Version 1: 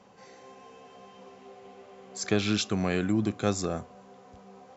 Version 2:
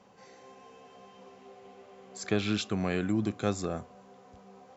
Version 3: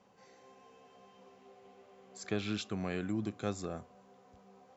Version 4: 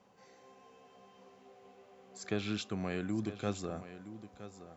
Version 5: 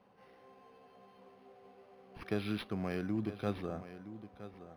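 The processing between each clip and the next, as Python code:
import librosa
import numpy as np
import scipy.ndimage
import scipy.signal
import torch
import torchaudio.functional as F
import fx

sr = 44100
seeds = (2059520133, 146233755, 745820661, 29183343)

y1 = fx.dynamic_eq(x, sr, hz=5800.0, q=1.8, threshold_db=-49.0, ratio=4.0, max_db=-6)
y1 = y1 * librosa.db_to_amplitude(-2.5)
y2 = fx.end_taper(y1, sr, db_per_s=460.0)
y2 = y2 * librosa.db_to_amplitude(-6.5)
y3 = y2 + 10.0 ** (-13.0 / 20.0) * np.pad(y2, (int(966 * sr / 1000.0), 0))[:len(y2)]
y4 = np.interp(np.arange(len(y3)), np.arange(len(y3))[::6], y3[::6])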